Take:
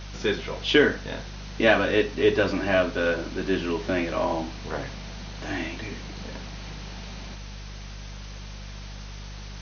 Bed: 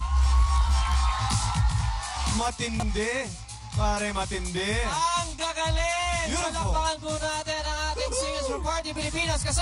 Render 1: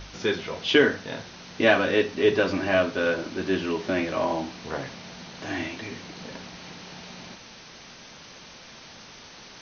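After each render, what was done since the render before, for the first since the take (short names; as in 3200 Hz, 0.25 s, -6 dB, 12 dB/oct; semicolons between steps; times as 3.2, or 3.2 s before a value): de-hum 50 Hz, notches 4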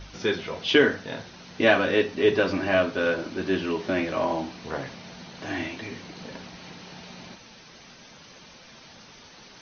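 denoiser 6 dB, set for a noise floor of -47 dBFS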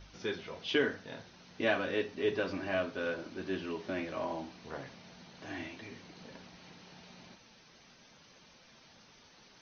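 gain -11 dB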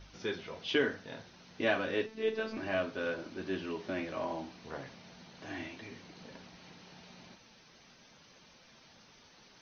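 2.06–2.57 robotiser 221 Hz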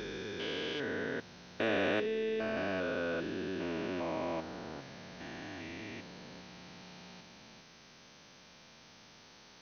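stepped spectrum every 0.4 s; in parallel at -4.5 dB: soft clip -29.5 dBFS, distortion -17 dB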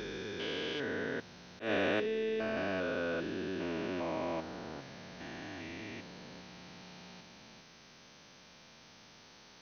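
auto swell 0.121 s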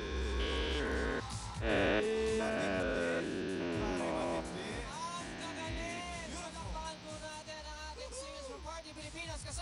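add bed -17 dB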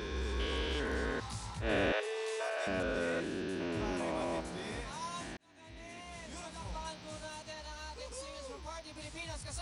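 1.92–2.67 steep high-pass 460 Hz; 5.37–6.71 fade in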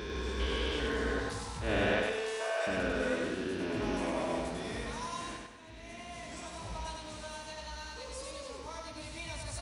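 on a send: feedback echo 98 ms, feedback 44%, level -3 dB; on the sum: spring tank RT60 1.1 s, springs 51 ms, chirp 55 ms, DRR 9.5 dB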